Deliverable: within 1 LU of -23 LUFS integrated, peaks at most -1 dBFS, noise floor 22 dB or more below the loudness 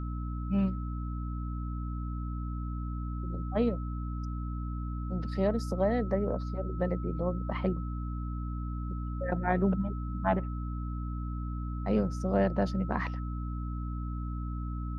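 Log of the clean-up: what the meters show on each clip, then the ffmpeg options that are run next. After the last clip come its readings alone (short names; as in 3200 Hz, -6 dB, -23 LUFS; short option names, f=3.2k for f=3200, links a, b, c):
hum 60 Hz; harmonics up to 300 Hz; hum level -32 dBFS; steady tone 1300 Hz; tone level -46 dBFS; loudness -33.0 LUFS; peak -13.0 dBFS; loudness target -23.0 LUFS
-> -af "bandreject=f=60:t=h:w=4,bandreject=f=120:t=h:w=4,bandreject=f=180:t=h:w=4,bandreject=f=240:t=h:w=4,bandreject=f=300:t=h:w=4"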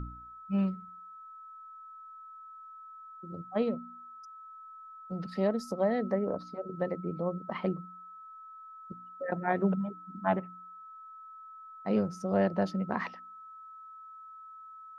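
hum none; steady tone 1300 Hz; tone level -46 dBFS
-> -af "bandreject=f=1.3k:w=30"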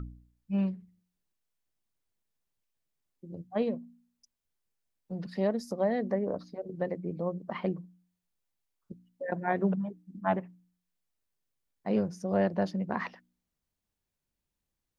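steady tone none; loudness -32.5 LUFS; peak -14.0 dBFS; loudness target -23.0 LUFS
-> -af "volume=9.5dB"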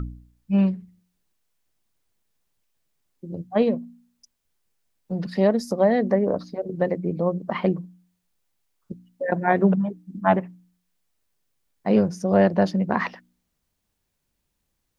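loudness -23.0 LUFS; peak -4.5 dBFS; noise floor -77 dBFS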